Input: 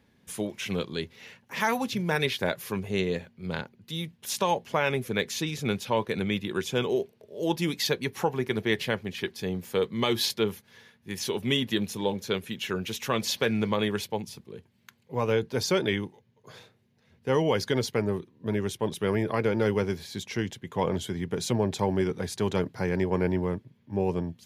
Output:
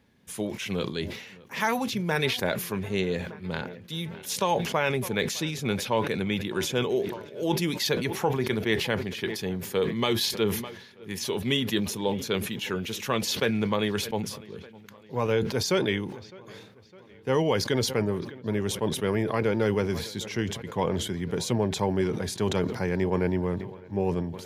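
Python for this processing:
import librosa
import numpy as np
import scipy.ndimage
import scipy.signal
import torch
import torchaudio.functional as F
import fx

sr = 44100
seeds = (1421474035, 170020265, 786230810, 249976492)

y = fx.echo_wet_lowpass(x, sr, ms=608, feedback_pct=59, hz=3000.0, wet_db=-22.5)
y = fx.sustainer(y, sr, db_per_s=67.0)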